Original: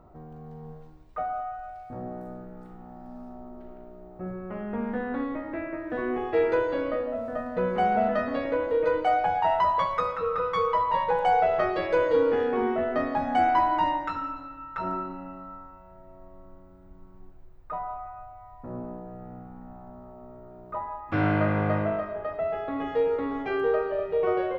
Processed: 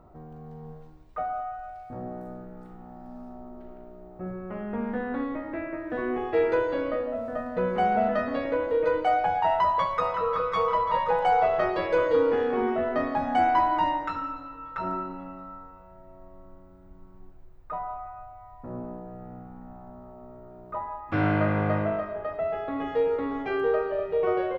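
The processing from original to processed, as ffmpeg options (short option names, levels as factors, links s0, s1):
-filter_complex "[0:a]asplit=2[s0][s1];[s1]afade=t=in:st=9.47:d=0.01,afade=t=out:st=10.44:d=0.01,aecho=0:1:540|1080|1620|2160|2700|3240|3780|4320|4860|5400:0.334965|0.234476|0.164133|0.114893|0.0804252|0.0562976|0.0394083|0.0275858|0.0193101|0.0135171[s2];[s0][s2]amix=inputs=2:normalize=0"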